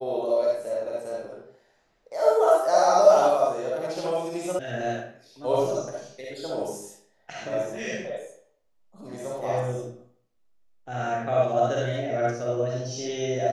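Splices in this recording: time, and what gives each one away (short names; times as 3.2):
4.59 sound cut off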